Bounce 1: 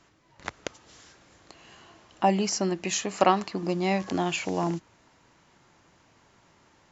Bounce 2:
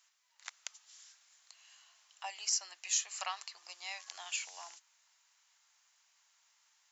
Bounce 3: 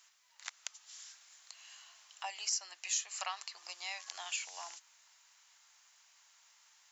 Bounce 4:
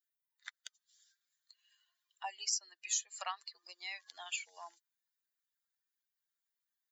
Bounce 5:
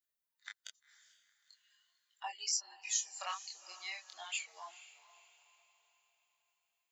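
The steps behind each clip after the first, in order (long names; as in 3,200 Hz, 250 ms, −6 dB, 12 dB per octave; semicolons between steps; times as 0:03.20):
high-pass filter 720 Hz 24 dB per octave; first difference
downward compressor 1.5 to 1, threshold −52 dBFS, peak gain reduction 9 dB; level +6 dB
spectral dynamics exaggerated over time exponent 2; level +2.5 dB
multi-voice chorus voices 2, 0.41 Hz, delay 24 ms, depth 4.9 ms; feedback delay with all-pass diffusion 467 ms, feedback 43%, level −16 dB; level +3.5 dB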